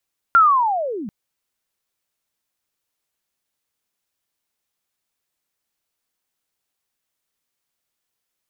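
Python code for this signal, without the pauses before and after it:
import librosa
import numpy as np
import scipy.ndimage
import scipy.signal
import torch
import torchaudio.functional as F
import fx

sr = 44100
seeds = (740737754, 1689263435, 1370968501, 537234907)

y = fx.chirp(sr, length_s=0.74, from_hz=1400.0, to_hz=180.0, law='linear', from_db=-7.5, to_db=-27.5)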